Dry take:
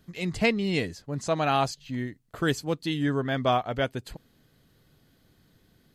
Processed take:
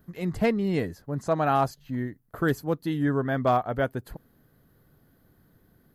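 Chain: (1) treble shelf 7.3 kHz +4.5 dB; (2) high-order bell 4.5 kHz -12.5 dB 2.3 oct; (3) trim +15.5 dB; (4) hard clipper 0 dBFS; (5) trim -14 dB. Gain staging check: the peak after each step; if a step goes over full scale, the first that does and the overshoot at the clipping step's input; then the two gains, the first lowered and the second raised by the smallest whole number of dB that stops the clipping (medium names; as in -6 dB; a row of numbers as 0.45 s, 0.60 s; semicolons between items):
-10.5 dBFS, -12.0 dBFS, +3.5 dBFS, 0.0 dBFS, -14.0 dBFS; step 3, 3.5 dB; step 3 +11.5 dB, step 5 -10 dB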